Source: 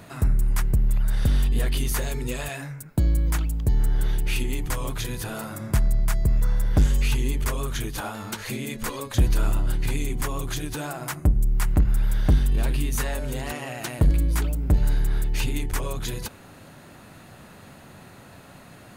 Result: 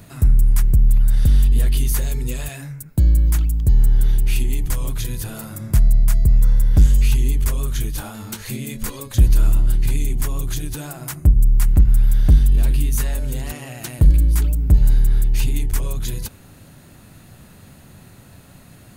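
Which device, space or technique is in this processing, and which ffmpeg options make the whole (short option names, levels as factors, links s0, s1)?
smiley-face EQ: -filter_complex "[0:a]lowshelf=f=140:g=8.5,equalizer=f=930:t=o:w=2.7:g=-5,highshelf=f=8200:g=7.5,asettb=1/sr,asplit=3[s0][s1][s2];[s0]atrim=end=7.744[s3];[s1]atrim=start=7.74:end=8.9,asetpts=PTS-STARTPTS,afade=t=in:d=0.004:c=qsin,afade=t=out:st=1.156:d=0.004:c=qsin,asplit=2[s4][s5];[s5]adelay=23,volume=0.282[s6];[s4][s6]amix=inputs=2:normalize=0,atrim=end_sample=51156[s7];[s2]atrim=start=8.896[s8];[s3][s7]acrossfade=d=0.004:c1=hsin:c2=qsin[s9];[s9][s8]acrossfade=d=0.004:c1=qsin:c2=hsin"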